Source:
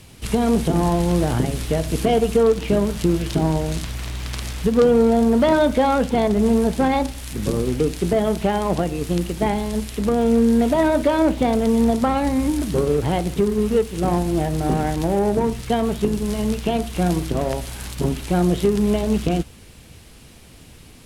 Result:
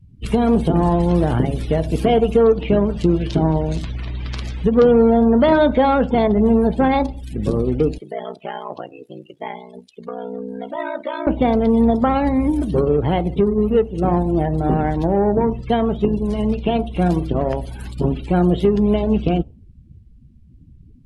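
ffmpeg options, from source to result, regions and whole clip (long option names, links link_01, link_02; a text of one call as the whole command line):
ffmpeg -i in.wav -filter_complex "[0:a]asettb=1/sr,asplit=3[link_01][link_02][link_03];[link_01]atrim=end=7.984[link_04];[link_02]atrim=start=7.98:end=11.27,asetpts=PTS-STARTPTS,afade=type=in:duration=0.004:curve=qsin,afade=type=out:start_time=3.286:duration=0.004:curve=qsin,highpass=frequency=1300:poles=1,aeval=exprs='val(0)*sin(2*PI*30*n/s)':channel_layout=same[link_05];[link_03]atrim=start=11.266[link_06];[link_04][link_05]acrossfade=duration=0.004:curve1=hsin:curve2=qsin[link_07];[link_07][link_06]acrossfade=duration=0.004:curve1=qsin:curve2=hsin,afftdn=noise_reduction=35:noise_floor=-36,highshelf=frequency=8100:gain=-8,volume=2.5dB" out.wav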